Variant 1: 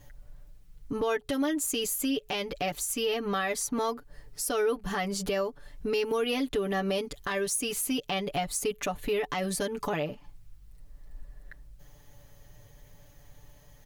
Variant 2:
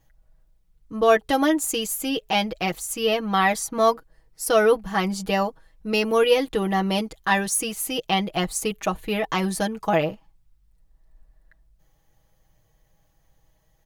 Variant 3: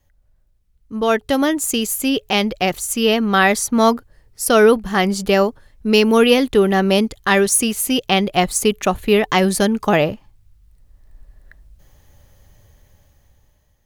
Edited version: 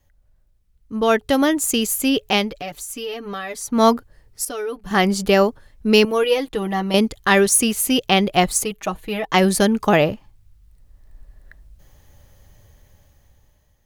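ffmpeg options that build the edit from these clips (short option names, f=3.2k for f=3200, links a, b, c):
-filter_complex "[0:a]asplit=2[a][b];[1:a]asplit=2[c][d];[2:a]asplit=5[e][f][g][h][i];[e]atrim=end=2.58[j];[a]atrim=start=2.34:end=3.84[k];[f]atrim=start=3.6:end=4.452[l];[b]atrim=start=4.448:end=4.912[m];[g]atrim=start=4.908:end=6.052[n];[c]atrim=start=6.048:end=6.942[o];[h]atrim=start=6.938:end=8.642[p];[d]atrim=start=8.638:end=9.342[q];[i]atrim=start=9.338[r];[j][k]acrossfade=d=0.24:c1=tri:c2=tri[s];[s][l]acrossfade=d=0.24:c1=tri:c2=tri[t];[t][m]acrossfade=d=0.004:c1=hsin:c2=hsin[u];[u][n]acrossfade=d=0.004:c1=hsin:c2=hsin[v];[v][o]acrossfade=d=0.004:c1=hsin:c2=hsin[w];[w][p]acrossfade=d=0.004:c1=hsin:c2=hsin[x];[x][q]acrossfade=d=0.004:c1=hsin:c2=hsin[y];[y][r]acrossfade=d=0.004:c1=hsin:c2=hsin"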